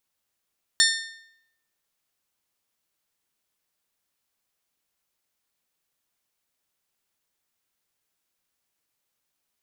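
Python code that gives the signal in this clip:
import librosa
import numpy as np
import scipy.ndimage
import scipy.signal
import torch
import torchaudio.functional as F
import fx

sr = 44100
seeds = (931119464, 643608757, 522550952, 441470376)

y = fx.strike_metal(sr, length_s=1.55, level_db=-19, body='bell', hz=1810.0, decay_s=0.79, tilt_db=0.5, modes=6)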